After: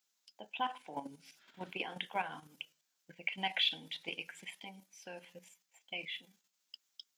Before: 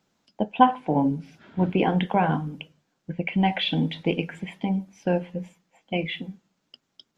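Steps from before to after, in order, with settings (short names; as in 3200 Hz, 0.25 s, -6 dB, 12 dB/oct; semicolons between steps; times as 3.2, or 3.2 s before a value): level quantiser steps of 10 dB; differentiator; gain +7 dB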